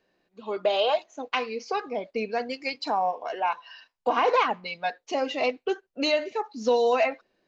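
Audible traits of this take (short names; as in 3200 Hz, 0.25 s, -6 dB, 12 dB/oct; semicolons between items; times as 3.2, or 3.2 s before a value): noise floor -77 dBFS; spectral tilt 0.0 dB/oct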